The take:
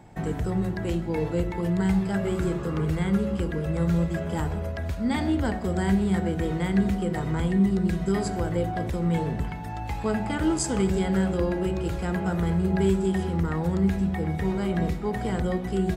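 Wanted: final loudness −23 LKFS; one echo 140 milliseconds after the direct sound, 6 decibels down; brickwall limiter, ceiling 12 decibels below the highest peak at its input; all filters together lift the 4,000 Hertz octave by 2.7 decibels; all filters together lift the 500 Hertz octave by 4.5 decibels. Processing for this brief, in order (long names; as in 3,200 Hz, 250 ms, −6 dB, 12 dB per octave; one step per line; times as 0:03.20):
parametric band 500 Hz +6 dB
parametric band 4,000 Hz +3.5 dB
brickwall limiter −22 dBFS
single-tap delay 140 ms −6 dB
level +6 dB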